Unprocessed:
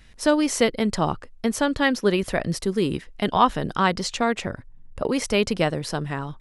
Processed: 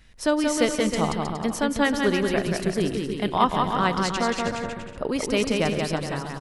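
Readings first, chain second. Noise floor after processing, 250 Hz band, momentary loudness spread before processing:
-38 dBFS, -0.5 dB, 8 LU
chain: bouncing-ball echo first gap 0.18 s, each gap 0.75×, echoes 5; spring tank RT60 2.9 s, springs 45 ms, chirp 50 ms, DRR 18 dB; gain -3 dB

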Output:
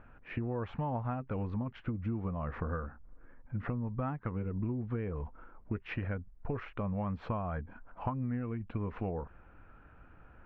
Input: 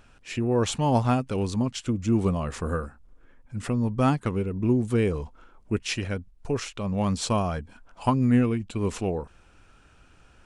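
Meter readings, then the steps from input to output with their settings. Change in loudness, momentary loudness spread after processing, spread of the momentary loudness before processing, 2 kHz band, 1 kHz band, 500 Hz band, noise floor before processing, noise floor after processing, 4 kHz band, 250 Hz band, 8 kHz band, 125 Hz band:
-11.0 dB, 6 LU, 12 LU, -9.0 dB, -10.5 dB, -12.5 dB, -57 dBFS, -58 dBFS, under -20 dB, -12.0 dB, under -40 dB, -9.0 dB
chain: LPF 1900 Hz 24 dB/oct; notch 390 Hz, Q 13; dynamic EQ 320 Hz, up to -5 dB, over -35 dBFS, Q 0.75; compressor 12:1, threshold -31 dBFS, peak gain reduction 13.5 dB

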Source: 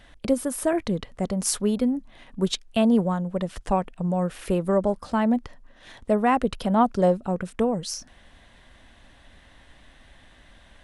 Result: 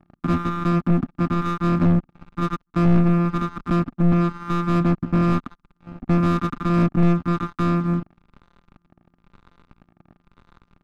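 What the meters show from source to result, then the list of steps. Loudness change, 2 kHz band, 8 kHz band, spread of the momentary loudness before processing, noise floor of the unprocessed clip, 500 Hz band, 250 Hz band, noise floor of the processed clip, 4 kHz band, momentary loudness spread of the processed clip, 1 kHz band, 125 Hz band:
+3.5 dB, +2.5 dB, under -15 dB, 9 LU, -54 dBFS, -4.0 dB, +4.0 dB, -71 dBFS, -6.0 dB, 7 LU, +0.5 dB, +11.5 dB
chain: sample sorter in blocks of 256 samples; harmonic tremolo 1 Hz, depth 70%, crossover 580 Hz; double band-pass 560 Hz, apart 2.3 oct; sample leveller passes 5; tilt -3.5 dB/oct; gain +5 dB

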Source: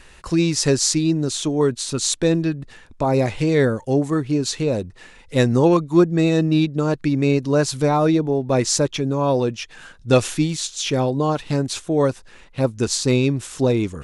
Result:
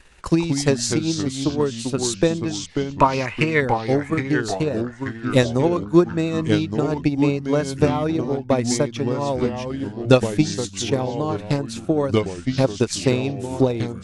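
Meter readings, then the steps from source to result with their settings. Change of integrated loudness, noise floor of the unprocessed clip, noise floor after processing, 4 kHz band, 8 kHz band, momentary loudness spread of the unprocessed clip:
-1.5 dB, -47 dBFS, -37 dBFS, -3.0 dB, -5.0 dB, 7 LU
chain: spectral gain 2.9–3.61, 890–3100 Hz +11 dB; transient shaper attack +12 dB, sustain -2 dB; echoes that change speed 0.118 s, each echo -3 st, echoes 3, each echo -6 dB; gain -7 dB

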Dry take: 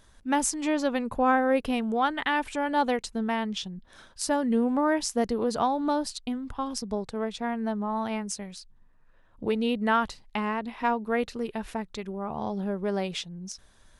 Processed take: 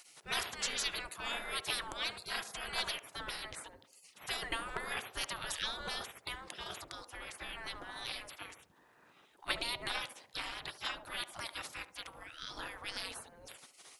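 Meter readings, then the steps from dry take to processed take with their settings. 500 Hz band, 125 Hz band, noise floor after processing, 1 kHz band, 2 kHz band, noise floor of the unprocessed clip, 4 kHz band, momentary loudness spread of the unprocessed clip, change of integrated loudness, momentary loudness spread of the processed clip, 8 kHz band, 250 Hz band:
-20.5 dB, -14.5 dB, -66 dBFS, -16.0 dB, -6.0 dB, -58 dBFS, +0.5 dB, 11 LU, -11.0 dB, 12 LU, -8.0 dB, -27.5 dB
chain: spectral gate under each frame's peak -30 dB weak; narrowing echo 71 ms, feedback 52%, band-pass 540 Hz, level -10 dB; gain +12 dB

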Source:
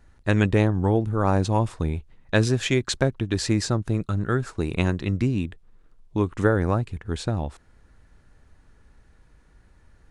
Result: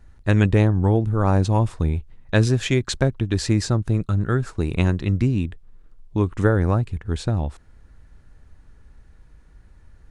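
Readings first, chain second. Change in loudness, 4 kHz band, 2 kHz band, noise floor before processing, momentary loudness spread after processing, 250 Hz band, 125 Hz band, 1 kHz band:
+3.0 dB, 0.0 dB, 0.0 dB, -57 dBFS, 8 LU, +2.0 dB, +4.5 dB, 0.0 dB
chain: low shelf 140 Hz +7.5 dB

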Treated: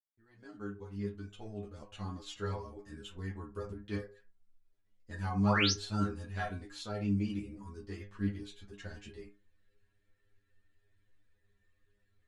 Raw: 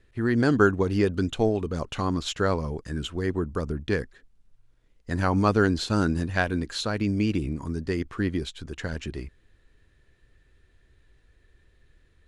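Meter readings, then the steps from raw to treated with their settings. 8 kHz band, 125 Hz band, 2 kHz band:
-4.5 dB, -10.0 dB, -10.5 dB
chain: opening faded in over 2.67 s; gate with hold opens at -54 dBFS; painted sound rise, 5.46–5.72, 740–6600 Hz -17 dBFS; metallic resonator 100 Hz, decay 0.36 s, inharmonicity 0.002; ensemble effect

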